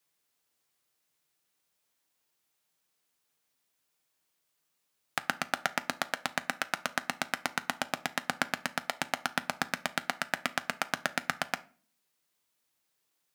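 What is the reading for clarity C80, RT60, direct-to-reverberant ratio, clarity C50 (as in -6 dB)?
25.0 dB, 0.40 s, 11.5 dB, 20.0 dB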